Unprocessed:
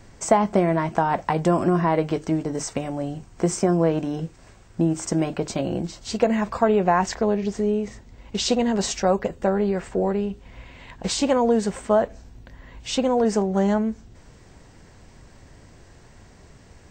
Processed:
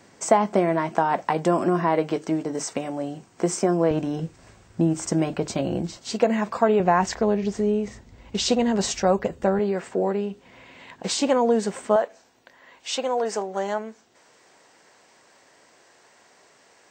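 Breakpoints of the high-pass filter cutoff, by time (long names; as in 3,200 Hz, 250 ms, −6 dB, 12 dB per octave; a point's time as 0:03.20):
210 Hz
from 0:03.91 59 Hz
from 0:05.97 180 Hz
from 0:06.80 56 Hz
from 0:09.59 210 Hz
from 0:11.96 520 Hz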